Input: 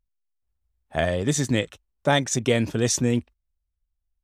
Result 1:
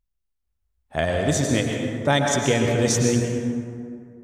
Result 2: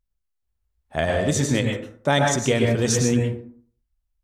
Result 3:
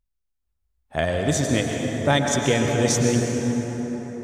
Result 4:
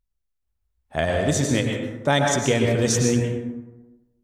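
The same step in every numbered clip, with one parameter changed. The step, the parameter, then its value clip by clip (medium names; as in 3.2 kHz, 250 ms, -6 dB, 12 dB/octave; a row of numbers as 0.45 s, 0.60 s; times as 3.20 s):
plate-style reverb, RT60: 2.3 s, 0.51 s, 5.2 s, 1.1 s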